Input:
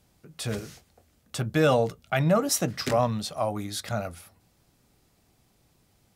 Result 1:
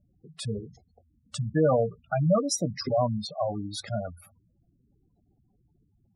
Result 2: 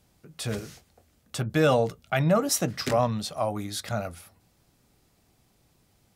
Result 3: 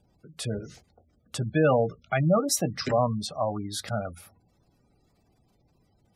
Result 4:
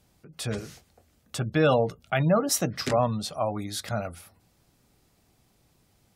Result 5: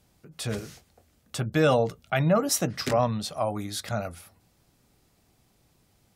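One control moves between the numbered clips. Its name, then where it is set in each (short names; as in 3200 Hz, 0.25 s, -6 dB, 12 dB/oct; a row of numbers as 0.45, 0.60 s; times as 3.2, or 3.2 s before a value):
spectral gate, under each frame's peak: -10, -60, -20, -35, -45 dB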